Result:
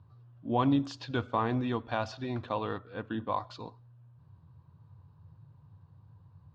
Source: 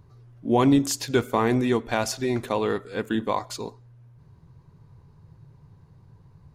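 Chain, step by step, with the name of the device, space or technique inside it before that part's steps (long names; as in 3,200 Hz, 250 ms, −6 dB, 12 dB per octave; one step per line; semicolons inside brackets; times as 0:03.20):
guitar cabinet (loudspeaker in its box 80–4,000 Hz, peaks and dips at 93 Hz +9 dB, 210 Hz −4 dB, 400 Hz −10 dB, 1,100 Hz +3 dB, 2,100 Hz −10 dB)
0:02.78–0:03.33: high-frequency loss of the air 190 metres
level −6 dB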